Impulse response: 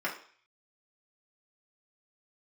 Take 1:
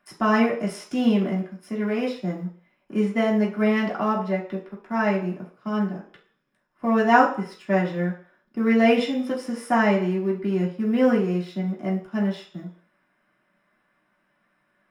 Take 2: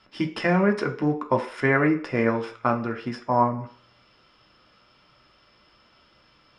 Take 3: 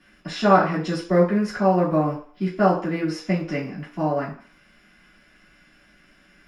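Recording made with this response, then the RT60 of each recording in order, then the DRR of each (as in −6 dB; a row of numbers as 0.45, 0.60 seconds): 1; 0.45, 0.45, 0.45 seconds; −5.0, 2.0, −12.0 decibels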